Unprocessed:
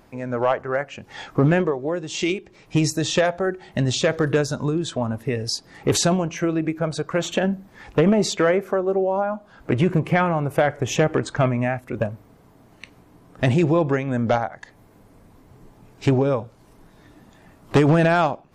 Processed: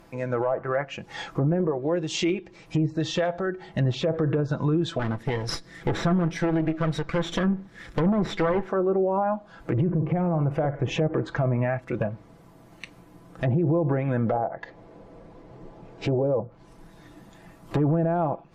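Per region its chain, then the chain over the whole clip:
2.86–3.78 s: low-pass 4 kHz 6 dB/octave + band-stop 2.5 kHz, Q 18 + compression 1.5:1, threshold -33 dBFS
4.99–8.69 s: comb filter that takes the minimum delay 0.55 ms + hard clipper -15.5 dBFS
9.72–10.94 s: bass shelf 97 Hz +6.5 dB + flutter echo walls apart 9.7 m, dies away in 0.2 s
14.32–16.41 s: low-pass 4.8 kHz + peaking EQ 510 Hz +8.5 dB 1.4 oct
whole clip: low-pass that closes with the level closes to 750 Hz, closed at -15 dBFS; comb 6 ms, depth 45%; peak limiter -16.5 dBFS

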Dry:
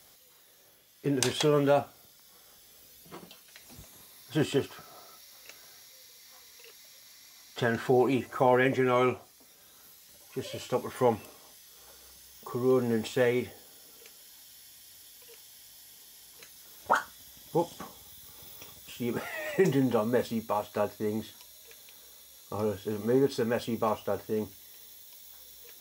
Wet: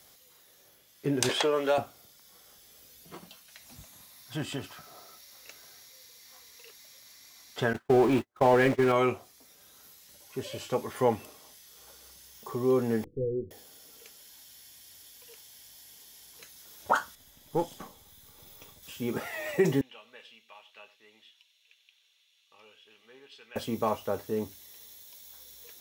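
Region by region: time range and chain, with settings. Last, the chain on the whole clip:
1.29–1.78 s: high-pass 440 Hz + treble shelf 8.8 kHz -6 dB + three bands compressed up and down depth 70%
3.18–4.87 s: peaking EQ 400 Hz -10.5 dB 0.49 oct + compression 1.5:1, threshold -36 dBFS
7.73–8.92 s: jump at every zero crossing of -26.5 dBFS + gate -26 dBFS, range -55 dB + treble shelf 3.4 kHz -8 dB
13.04–13.51 s: comb filter that takes the minimum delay 0.51 ms + rippled Chebyshev low-pass 510 Hz, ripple 6 dB
17.15–18.83 s: partial rectifier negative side -3 dB + band-stop 5.6 kHz, Q 18 + tape noise reduction on one side only decoder only
19.81–23.56 s: band-pass filter 2.8 kHz, Q 4.9 + delay 94 ms -16.5 dB
whole clip: none

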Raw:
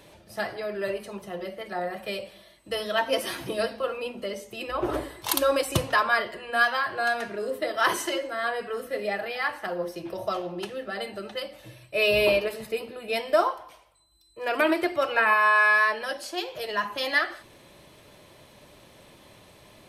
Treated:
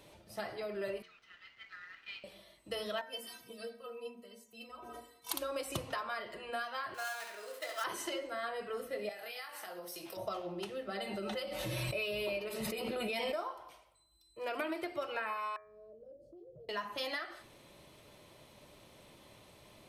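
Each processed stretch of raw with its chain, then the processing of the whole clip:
1.02–2.24 s: steep high-pass 1.3 kHz 72 dB/octave + companded quantiser 4-bit + distance through air 240 m
3.01–5.31 s: high-pass 45 Hz + treble shelf 8 kHz +9 dB + inharmonic resonator 230 Hz, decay 0.22 s, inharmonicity 0.008
6.94–7.84 s: dead-time distortion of 0.063 ms + high-pass 950 Hz + flutter echo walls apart 11.8 m, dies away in 0.62 s
9.09–10.17 s: RIAA curve recording + compression 10:1, threshold -35 dBFS + doubling 22 ms -6.5 dB
10.88–13.36 s: comb 5.4 ms, depth 40% + swell ahead of each attack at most 27 dB/s
15.56–16.69 s: elliptic low-pass 570 Hz + resonant low shelf 180 Hz +7.5 dB, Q 3 + compression 3:1, threshold -48 dBFS
whole clip: compression 6:1, threshold -28 dBFS; band-stop 1.7 kHz, Q 14; de-hum 90.44 Hz, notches 27; trim -6 dB

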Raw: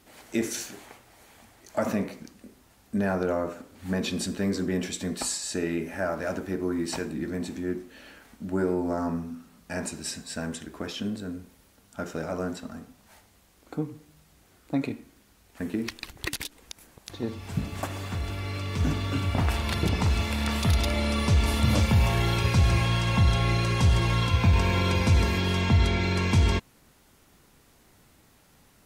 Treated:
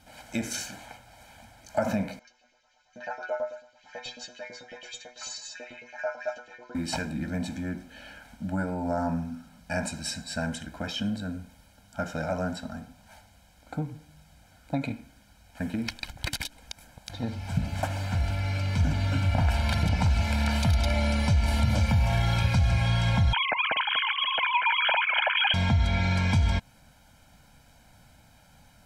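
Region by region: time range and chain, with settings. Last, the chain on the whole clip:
2.19–6.75 s: LFO high-pass saw up 9.1 Hz 380–3700 Hz + inharmonic resonator 120 Hz, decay 0.24 s, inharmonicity 0.002 + careless resampling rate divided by 3×, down none, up filtered
23.33–25.54 s: formants replaced by sine waves + echo whose repeats swap between lows and highs 240 ms, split 2 kHz, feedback 65%, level -13.5 dB
whole clip: treble shelf 9.6 kHz -9 dB; compression, threshold -24 dBFS; comb 1.3 ms, depth 93%

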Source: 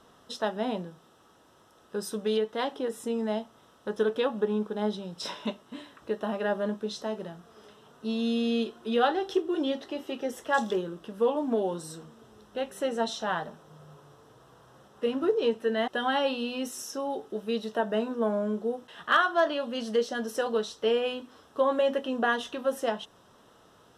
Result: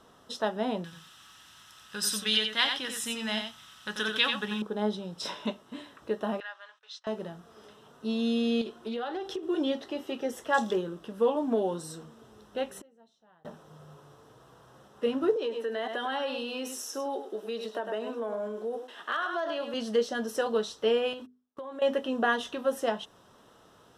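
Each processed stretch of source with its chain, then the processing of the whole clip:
0.84–4.62 s: FFT filter 150 Hz 0 dB, 470 Hz -14 dB, 1.8 kHz +10 dB, 2.7 kHz +14 dB, 12 kHz +9 dB + delay 89 ms -6 dB
6.40–7.07 s: gate -43 dBFS, range -20 dB + Bessel high-pass 1.8 kHz, order 4 + distance through air 130 m
8.61–9.43 s: compression 10:1, threshold -30 dBFS + loudspeaker Doppler distortion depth 0.1 ms
12.78–13.45 s: tilt shelf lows +3.5 dB, about 660 Hz + inverted gate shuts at -35 dBFS, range -32 dB
15.36–19.74 s: delay 101 ms -10 dB + compression 4:1, threshold -28 dBFS + high-pass 270 Hz 24 dB/octave
21.13–21.82 s: gate -45 dBFS, range -39 dB + hum notches 50/100/150/200/250/300/350/400/450 Hz + compression 8:1, threshold -37 dBFS
whole clip: none

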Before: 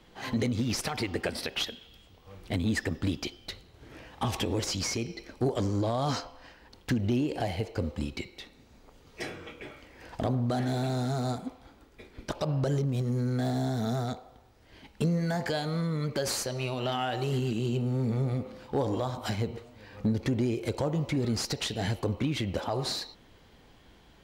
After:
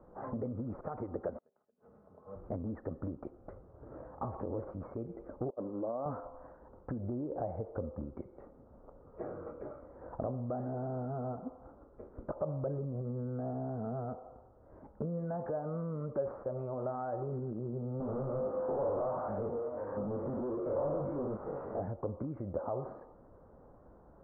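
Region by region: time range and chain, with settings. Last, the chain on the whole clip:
1.38–2.36 s: high-pass 86 Hz 24 dB/octave + comb 4.7 ms, depth 53% + inverted gate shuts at -27 dBFS, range -36 dB
5.50–6.06 s: expander -24 dBFS + resonant low shelf 160 Hz -11 dB, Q 1.5
18.00–21.80 s: spectrogram pixelated in time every 100 ms + chorus 1.5 Hz, delay 19.5 ms, depth 2.1 ms + overdrive pedal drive 29 dB, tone 1.2 kHz, clips at -22 dBFS
whole clip: compression 3:1, threshold -37 dBFS; elliptic low-pass 1.3 kHz, stop band 60 dB; peaking EQ 560 Hz +8.5 dB 0.47 oct; trim -1 dB

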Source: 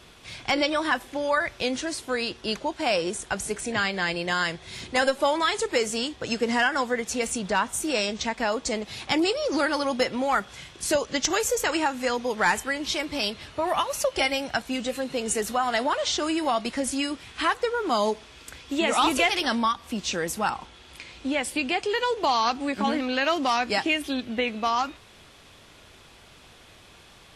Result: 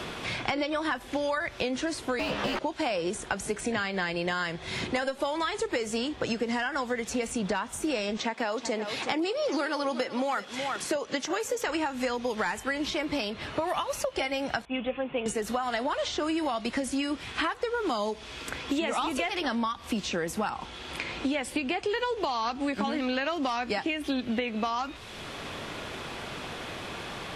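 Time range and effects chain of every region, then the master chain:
2.19–2.59 s: overdrive pedal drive 33 dB, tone 1.5 kHz, clips at -14.5 dBFS + ring modulator 170 Hz + doubling 14 ms -4 dB
8.17–11.68 s: high-pass 240 Hz + delay 371 ms -16 dB + tape noise reduction on one side only encoder only
14.65–15.26 s: rippled Chebyshev low-pass 3.5 kHz, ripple 6 dB + three bands expanded up and down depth 100%
whole clip: compression, threshold -29 dBFS; treble shelf 4.5 kHz -8 dB; three bands compressed up and down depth 70%; trim +3 dB

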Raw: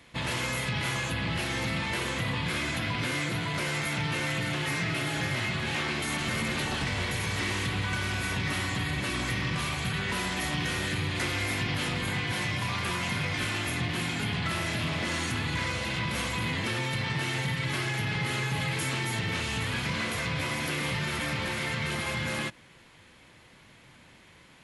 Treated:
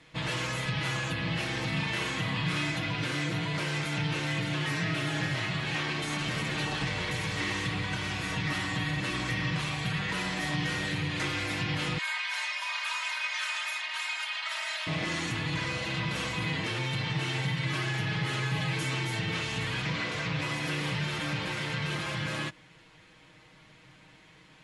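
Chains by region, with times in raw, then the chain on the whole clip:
1.69–2.71 s: band-stop 510 Hz, Q 7.3 + flutter echo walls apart 5.9 m, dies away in 0.29 s
11.98–14.87 s: inverse Chebyshev high-pass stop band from 190 Hz, stop band 70 dB + comb 3.2 ms, depth 68%
19.82–20.42 s: low-pass 8 kHz + loudspeaker Doppler distortion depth 0.14 ms
whole clip: low-pass 7.5 kHz 12 dB/octave; comb 6.4 ms; trim -2.5 dB

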